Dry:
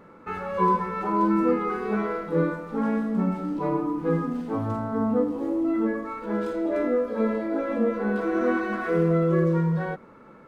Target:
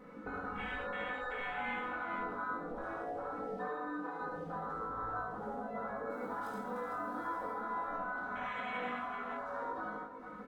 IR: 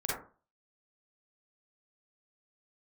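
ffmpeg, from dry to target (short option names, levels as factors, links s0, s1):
-filter_complex "[0:a]asettb=1/sr,asplit=3[s0][s1][s2];[s0]atrim=end=6.104[s3];[s1]atrim=start=6.1:end=7.51,asetpts=PTS-STARTPTS,afade=t=in:d=0.004:c=qsin,afade=t=out:st=1.406:d=0.004:c=qsin,aemphasis=mode=production:type=75fm[s4];[s2]atrim=start=7.506[s5];[s3][s4]acrossfade=d=0.004:c1=hsin:c2=qsin[s6];[s6][s5]acrossfade=d=0.004:c1=qsin:c2=hsin,afwtdn=0.0282,asplit=3[s7][s8][s9];[s7]afade=t=out:st=3.56:d=0.02[s10];[s8]highpass=880,afade=t=in:st=3.56:d=0.02,afade=t=out:st=4.2:d=0.02[s11];[s9]afade=t=in:st=4.2:d=0.02[s12];[s10][s11][s12]amix=inputs=3:normalize=0,afftfilt=real='re*lt(hypot(re,im),0.0891)':imag='im*lt(hypot(re,im),0.0891)':win_size=1024:overlap=0.75,aecho=1:1:4:0.98,acompressor=threshold=0.00224:ratio=4,flanger=delay=19:depth=2.1:speed=0.2,aecho=1:1:71|108|455:0.668|0.447|0.398,volume=4.47"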